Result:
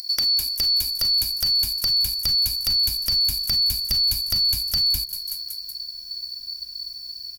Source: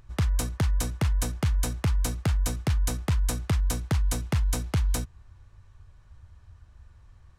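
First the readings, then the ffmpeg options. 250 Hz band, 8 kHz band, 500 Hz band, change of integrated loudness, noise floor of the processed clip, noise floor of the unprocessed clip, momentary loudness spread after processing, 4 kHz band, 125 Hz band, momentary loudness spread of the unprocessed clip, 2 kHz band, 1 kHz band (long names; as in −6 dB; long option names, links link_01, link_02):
−13.0 dB, +4.5 dB, below −10 dB, +8.5 dB, −38 dBFS, −55 dBFS, 12 LU, +24.0 dB, −13.0 dB, 1 LU, −4.5 dB, below −10 dB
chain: -filter_complex "[0:a]afftfilt=real='real(if(lt(b,272),68*(eq(floor(b/68),0)*1+eq(floor(b/68),1)*2+eq(floor(b/68),2)*3+eq(floor(b/68),3)*0)+mod(b,68),b),0)':imag='imag(if(lt(b,272),68*(eq(floor(b/68),0)*1+eq(floor(b/68),1)*2+eq(floor(b/68),2)*3+eq(floor(b/68),3)*0)+mod(b,68),b),0)':win_size=2048:overlap=0.75,aexciter=amount=10.3:drive=2.4:freq=11000,asplit=5[link_01][link_02][link_03][link_04][link_05];[link_02]adelay=187,afreqshift=-35,volume=-23.5dB[link_06];[link_03]adelay=374,afreqshift=-70,volume=-27.8dB[link_07];[link_04]adelay=561,afreqshift=-105,volume=-32.1dB[link_08];[link_05]adelay=748,afreqshift=-140,volume=-36.4dB[link_09];[link_01][link_06][link_07][link_08][link_09]amix=inputs=5:normalize=0,acrossover=split=390[link_10][link_11];[link_11]acompressor=threshold=-35dB:ratio=6[link_12];[link_10][link_12]amix=inputs=2:normalize=0,asubboost=boost=9.5:cutoff=130,crystalizer=i=6.5:c=0,acrossover=split=5100[link_13][link_14];[link_14]acompressor=threshold=-25dB:ratio=4:attack=1:release=60[link_15];[link_13][link_15]amix=inputs=2:normalize=0,volume=2.5dB"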